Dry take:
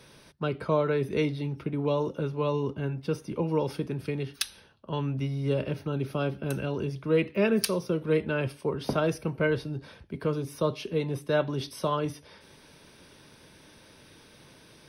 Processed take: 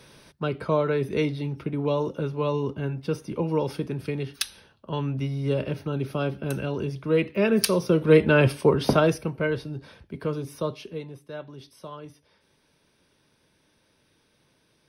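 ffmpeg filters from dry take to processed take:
ffmpeg -i in.wav -af "volume=11.5dB,afade=type=in:start_time=7.45:duration=1.1:silence=0.334965,afade=type=out:start_time=8.55:duration=0.78:silence=0.266073,afade=type=out:start_time=10.5:duration=0.68:silence=0.251189" out.wav

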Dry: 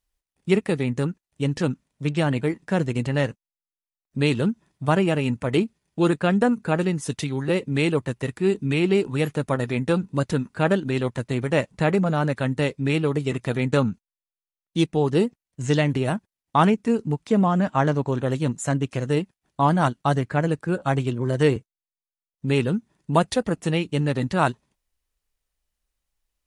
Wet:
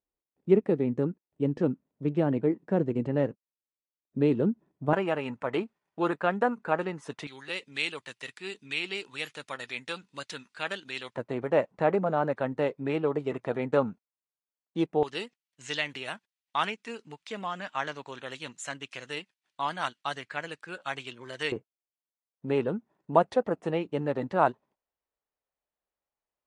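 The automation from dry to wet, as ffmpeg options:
ffmpeg -i in.wav -af "asetnsamples=nb_out_samples=441:pad=0,asendcmd='4.93 bandpass f 990;7.27 bandpass f 3600;11.15 bandpass f 690;15.03 bandpass f 3000;21.52 bandpass f 660',bandpass=frequency=370:width_type=q:width=0.99:csg=0" out.wav

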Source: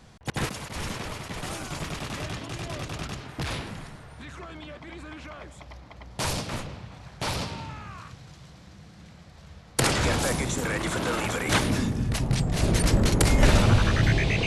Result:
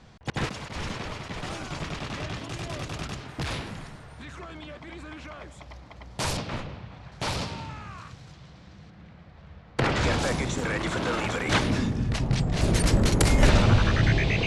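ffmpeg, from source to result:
ffmpeg -i in.wav -af "asetnsamples=nb_out_samples=441:pad=0,asendcmd='2.36 lowpass f 10000;6.37 lowpass f 4000;7.12 lowpass f 9000;8.33 lowpass f 4900;8.9 lowpass f 2700;9.96 lowpass f 5900;12.61 lowpass f 11000;13.49 lowpass f 6000',lowpass=5700" out.wav

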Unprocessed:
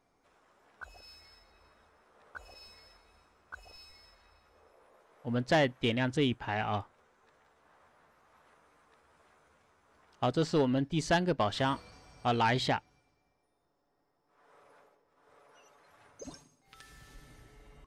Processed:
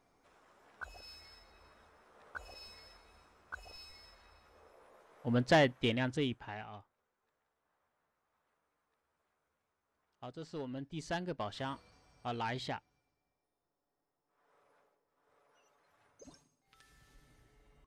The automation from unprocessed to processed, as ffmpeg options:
ffmpeg -i in.wav -af "volume=8.5dB,afade=type=out:start_time=5.4:duration=0.93:silence=0.398107,afade=type=out:start_time=6.33:duration=0.39:silence=0.298538,afade=type=in:start_time=10.39:duration=0.79:silence=0.421697" out.wav

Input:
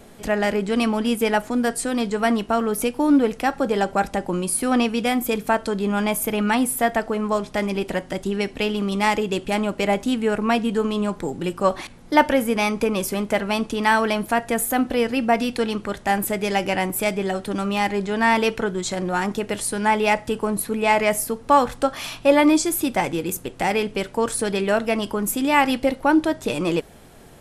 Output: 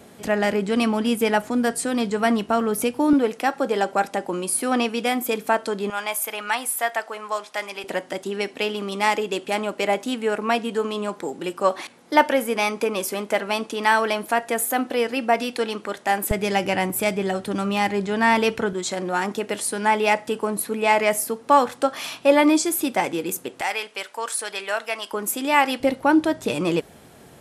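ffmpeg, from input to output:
ffmpeg -i in.wav -af "asetnsamples=nb_out_samples=441:pad=0,asendcmd='3.13 highpass f 270;5.9 highpass f 780;7.84 highpass f 310;16.31 highpass f 80;18.73 highpass f 230;23.61 highpass f 870;25.13 highpass f 350;25.8 highpass f 82',highpass=92" out.wav

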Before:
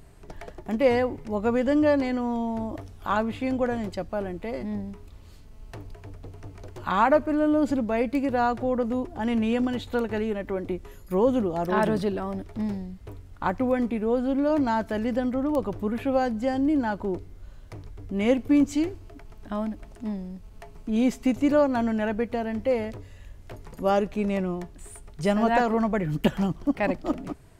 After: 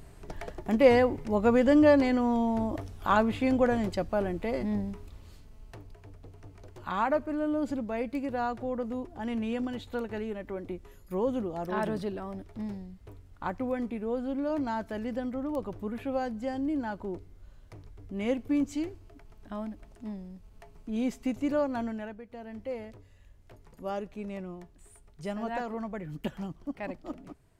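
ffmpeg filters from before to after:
ffmpeg -i in.wav -af "volume=9dB,afade=type=out:start_time=4.84:duration=0.99:silence=0.375837,afade=type=out:start_time=21.81:duration=0.41:silence=0.237137,afade=type=in:start_time=22.22:duration=0.34:silence=0.398107" out.wav

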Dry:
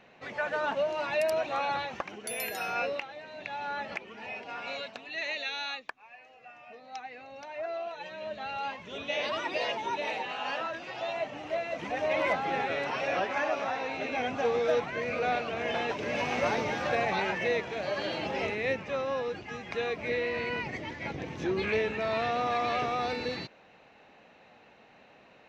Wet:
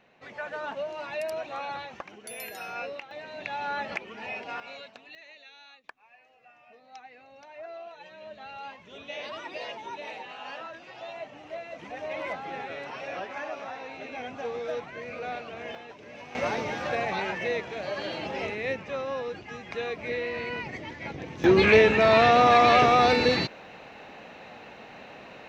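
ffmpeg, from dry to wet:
ffmpeg -i in.wav -af "asetnsamples=nb_out_samples=441:pad=0,asendcmd='3.11 volume volume 3.5dB;4.6 volume volume -6dB;5.15 volume volume -16.5dB;5.84 volume volume -6dB;15.75 volume volume -13.5dB;16.35 volume volume -0.5dB;21.44 volume volume 11.5dB',volume=-4.5dB" out.wav

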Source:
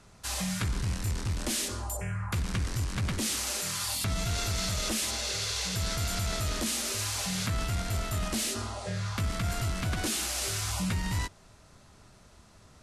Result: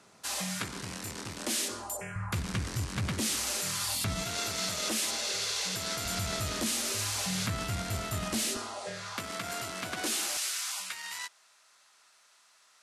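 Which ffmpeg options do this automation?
ffmpeg -i in.wav -af "asetnsamples=nb_out_samples=441:pad=0,asendcmd='2.16 highpass f 88;4.22 highpass f 220;6.05 highpass f 98;8.57 highpass f 310;10.37 highpass f 1300',highpass=230" out.wav

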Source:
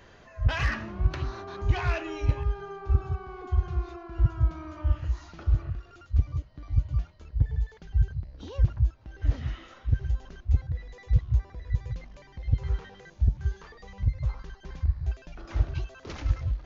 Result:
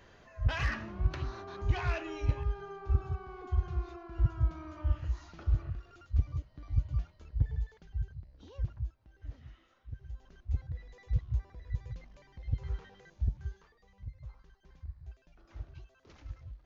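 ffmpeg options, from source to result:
ffmpeg -i in.wav -af "volume=6dB,afade=type=out:start_time=7.48:duration=0.52:silence=0.446684,afade=type=out:start_time=8.73:duration=0.57:silence=0.446684,afade=type=in:start_time=10.01:duration=0.67:silence=0.281838,afade=type=out:start_time=13.3:duration=0.43:silence=0.316228" out.wav

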